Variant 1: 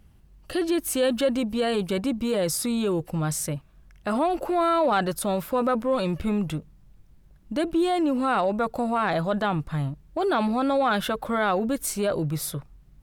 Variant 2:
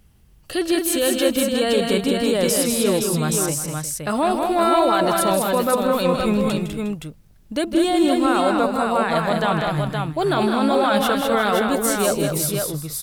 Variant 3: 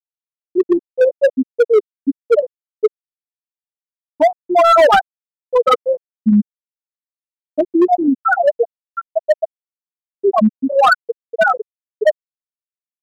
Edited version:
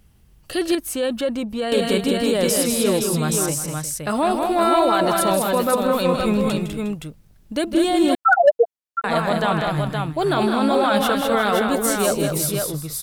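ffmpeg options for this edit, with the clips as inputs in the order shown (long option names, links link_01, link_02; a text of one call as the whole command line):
ffmpeg -i take0.wav -i take1.wav -i take2.wav -filter_complex "[1:a]asplit=3[link_01][link_02][link_03];[link_01]atrim=end=0.752[link_04];[0:a]atrim=start=0.748:end=1.722[link_05];[link_02]atrim=start=1.718:end=8.152[link_06];[2:a]atrim=start=8.148:end=9.042[link_07];[link_03]atrim=start=9.038[link_08];[link_04][link_05]acrossfade=duration=0.004:curve1=hsin:curve2=hsin[link_09];[link_09][link_06]acrossfade=duration=0.004:curve1=hsin:curve2=hsin[link_10];[link_10][link_07]acrossfade=duration=0.004:curve1=hsin:curve2=hsin[link_11];[link_11][link_08]acrossfade=duration=0.004:curve1=hsin:curve2=hsin" out.wav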